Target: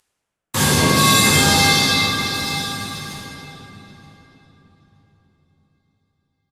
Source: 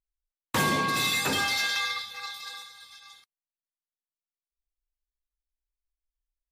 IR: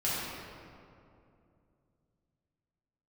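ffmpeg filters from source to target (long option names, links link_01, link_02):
-filter_complex "[0:a]bass=frequency=250:gain=6,treble=frequency=4000:gain=10,asplit=2[link_01][link_02];[link_02]alimiter=limit=-20dB:level=0:latency=1,volume=-1dB[link_03];[link_01][link_03]amix=inputs=2:normalize=0,acompressor=mode=upward:threshold=-35dB:ratio=2.5,acrusher=bits=5:mix=0:aa=0.5,asplit=2[link_04][link_05];[link_05]adelay=926,lowpass=frequency=2800:poles=1,volume=-15dB,asplit=2[link_06][link_07];[link_07]adelay=926,lowpass=frequency=2800:poles=1,volume=0.23[link_08];[link_04][link_06][link_08]amix=inputs=3:normalize=0[link_09];[1:a]atrim=start_sample=2205,asetrate=26019,aresample=44100[link_10];[link_09][link_10]afir=irnorm=-1:irlink=0,volume=-5.5dB"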